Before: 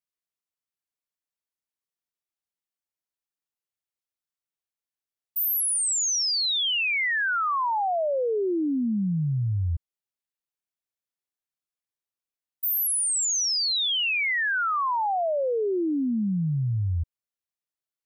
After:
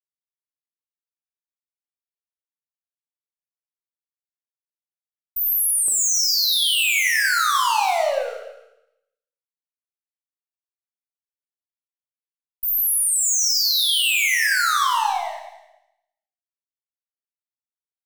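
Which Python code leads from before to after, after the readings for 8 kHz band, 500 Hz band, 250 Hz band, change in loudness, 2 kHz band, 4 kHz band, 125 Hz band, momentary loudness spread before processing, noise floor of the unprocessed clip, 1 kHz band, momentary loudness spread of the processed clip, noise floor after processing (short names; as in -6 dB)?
+5.5 dB, -2.5 dB, under -35 dB, +6.5 dB, +5.0 dB, +5.5 dB, under -40 dB, 5 LU, under -85 dBFS, +4.5 dB, 10 LU, under -85 dBFS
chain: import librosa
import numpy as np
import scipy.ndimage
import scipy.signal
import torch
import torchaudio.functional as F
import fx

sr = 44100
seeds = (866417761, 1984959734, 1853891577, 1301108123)

p1 = fx.weighting(x, sr, curve='ITU-R 468')
p2 = fx.rider(p1, sr, range_db=5, speed_s=0.5)
p3 = p1 + (p2 * librosa.db_to_amplitude(1.5))
p4 = fx.filter_lfo_highpass(p3, sr, shape='saw_up', hz=0.17, low_hz=440.0, high_hz=5200.0, q=1.6)
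p5 = fx.fuzz(p4, sr, gain_db=30.0, gate_db=-39.0)
p6 = p5 + fx.echo_single(p5, sr, ms=294, db=-18.5, dry=0)
p7 = fx.rev_schroeder(p6, sr, rt60_s=0.82, comb_ms=27, drr_db=0.5)
y = p7 * librosa.db_to_amplitude(-8.5)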